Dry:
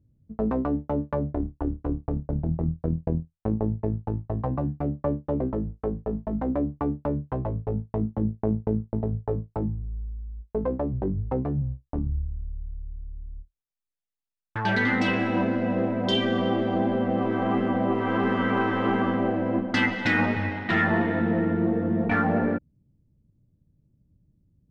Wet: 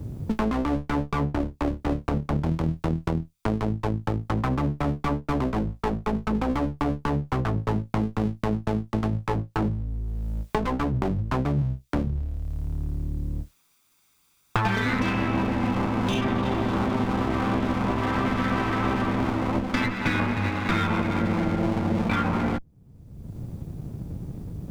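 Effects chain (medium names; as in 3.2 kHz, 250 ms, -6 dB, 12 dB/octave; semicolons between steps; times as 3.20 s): comb filter that takes the minimum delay 0.83 ms; three bands compressed up and down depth 100%; trim +1.5 dB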